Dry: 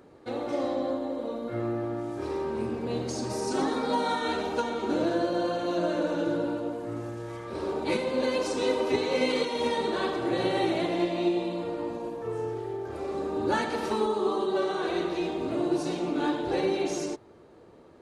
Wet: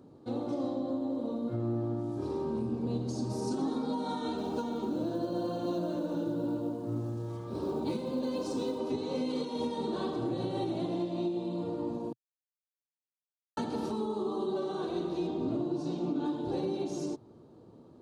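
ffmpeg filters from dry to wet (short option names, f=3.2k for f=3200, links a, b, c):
-filter_complex "[0:a]asettb=1/sr,asplit=3[a][b][c];[a]atrim=end=4.374[d];[b]atrim=start=4.37:end=8.78,asetpts=PTS-STARTPTS,afade=t=in:d=0.004:c=qsin,afade=t=out:st=4.406:d=0.004:c=qsin,acrusher=bits=8:mode=log:mix=0:aa=0.000001[e];[c]atrim=start=8.776[f];[d][e]acrossfade=d=0.004:c1=hsin:c2=qsin[g];[g][f]acrossfade=d=0.004:c1=qsin:c2=hsin,asettb=1/sr,asplit=3[h][i][j];[h]atrim=end=15.274[k];[i]atrim=start=15.27:end=16.26,asetpts=PTS-STARTPTS,afade=t=in:d=0.004:c=qsin,afade=t=out:st=0.986:d=0.004:c=qsin,lowpass=6.6k[l];[j]atrim=start=16.256[m];[k][l]acrossfade=d=0.004:c1=hsin:c2=qsin[n];[n][m]acrossfade=d=0.004:c1=qsin:c2=hsin,asplit=3[o][p][q];[o]atrim=end=12.13,asetpts=PTS-STARTPTS,afade=t=out:st=12.126:d=0.004:c=hsin[r];[p]atrim=start=12.13:end=13.57,asetpts=PTS-STARTPTS,volume=0[s];[q]atrim=start=13.57,asetpts=PTS-STARTPTS,afade=t=in:d=0.004:c=hsin[t];[r][s][t]concat=n=3:v=0:a=1,equalizer=f=125:t=o:w=1:g=11,equalizer=f=250:t=o:w=1:g=9,equalizer=f=1k:t=o:w=1:g=4,equalizer=f=2k:t=o:w=1:g=-12,equalizer=f=4k:t=o:w=1:g=4,alimiter=limit=-16.5dB:level=0:latency=1:release=269,volume=-7.5dB"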